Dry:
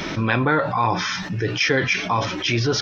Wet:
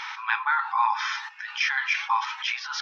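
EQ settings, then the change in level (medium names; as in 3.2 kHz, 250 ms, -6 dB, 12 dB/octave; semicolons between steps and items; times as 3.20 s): brick-wall FIR high-pass 790 Hz; low-pass 2 kHz 6 dB/octave; 0.0 dB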